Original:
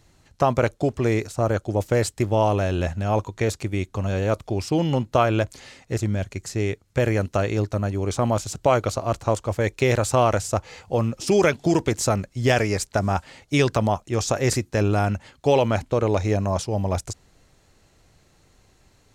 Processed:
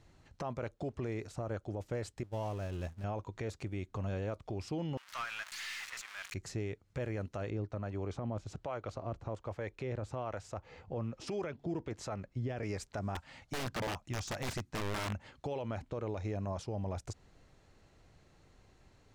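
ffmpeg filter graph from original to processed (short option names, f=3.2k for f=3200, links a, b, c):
-filter_complex "[0:a]asettb=1/sr,asplit=3[a][b][c];[a]atrim=end=2.234[d];[b]atrim=start=2.23:end=3.04,asetpts=PTS-STARTPTS,afade=t=in:d=0.004:c=qsin,afade=t=out:st=0.806:d=0.004:c=qsin,aeval=exprs='val(0)+0.5*0.0422*sgn(val(0))':c=same,agate=range=-33dB:threshold=-12dB:ratio=3:release=100:detection=peak,bass=f=250:g=4,treble=f=4k:g=9[e];[c]atrim=start=3.036[f];[d][e]acrossfade=d=0.004:c1=hsin:c2=qsin[g];[g][f]acrossfade=d=0.004:c1=qsin:c2=hsin,asettb=1/sr,asplit=3[h][i][j];[h]atrim=end=4.974[k];[i]atrim=start=4.97:end=6.34,asetpts=PTS-STARTPTS,afade=t=in:d=0.004:c=qsin,afade=t=out:st=1.366:d=0.004:c=qsin,aeval=exprs='val(0)+0.5*0.0501*sgn(val(0))':c=same,highpass=f=1.3k:w=0.5412,highpass=f=1.3k:w=1.3066,aeval=exprs='(tanh(15.8*val(0)+0.15)-tanh(0.15))/15.8':c=same[l];[j]atrim=start=6.336[m];[k][l]acrossfade=d=0.004:c1=hsin:c2=qsin[n];[n][m]acrossfade=d=0.004:c1=qsin:c2=hsin,asettb=1/sr,asplit=3[o][p][q];[o]atrim=end=7.504[r];[p]atrim=start=7.5:end=12.63,asetpts=PTS-STARTPTS,afade=t=in:d=0.004:c=qsin,afade=t=out:st=5.126:d=0.004:c=qsin,lowpass=f=3.1k:p=1,acrossover=split=510[s][t];[s]aeval=exprs='val(0)*(1-0.5/2+0.5/2*cos(2*PI*1.2*n/s))':c=same[u];[t]aeval=exprs='val(0)*(1-0.5/2-0.5/2*cos(2*PI*1.2*n/s))':c=same[v];[u][v]amix=inputs=2:normalize=0[w];[q]atrim=start=12.626[x];[r][w]acrossfade=d=0.004:c1=hsin:c2=qsin[y];[y][x]acrossfade=d=0.004:c1=qsin:c2=hsin,asettb=1/sr,asplit=3[z][aa][ab];[z]atrim=end=13.154[ac];[aa]atrim=start=13.15:end=15.15,asetpts=PTS-STARTPTS,afade=t=in:d=0.004:c=qsin,afade=t=out:st=1.996:d=0.004:c=qsin,equalizer=f=410:w=2.4:g=-13,aeval=exprs='(mod(7.94*val(0)+1,2)-1)/7.94':c=same[ad];[ab]atrim=start=15.146[ae];[ac][ad]acrossfade=d=0.004:c1=hsin:c2=qsin[af];[af][ae]acrossfade=d=0.004:c1=qsin:c2=hsin,acompressor=threshold=-30dB:ratio=4,aemphasis=mode=reproduction:type=50kf,alimiter=level_in=1dB:limit=-24dB:level=0:latency=1:release=13,volume=-1dB,volume=-4.5dB"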